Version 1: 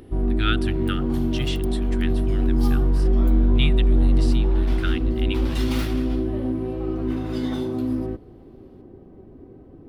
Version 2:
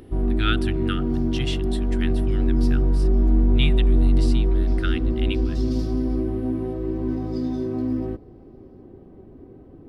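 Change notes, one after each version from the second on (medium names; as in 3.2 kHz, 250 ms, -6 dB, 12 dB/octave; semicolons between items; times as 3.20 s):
second sound: add ladder band-pass 5.6 kHz, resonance 60%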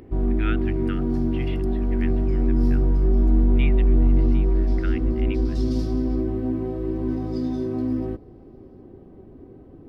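speech: add four-pole ladder low-pass 2.5 kHz, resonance 55%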